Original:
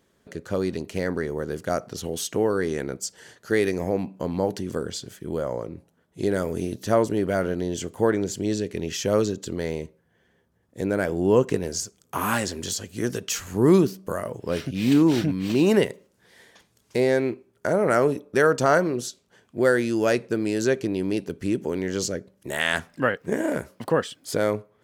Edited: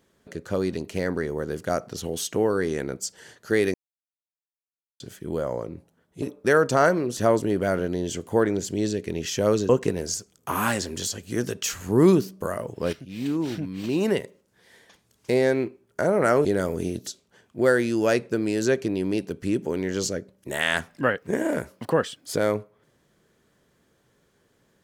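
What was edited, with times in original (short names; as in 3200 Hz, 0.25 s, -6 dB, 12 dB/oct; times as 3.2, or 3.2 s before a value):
3.74–5 mute
6.22–6.84 swap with 18.11–19.06
9.36–11.35 cut
14.59–16.98 fade in linear, from -12.5 dB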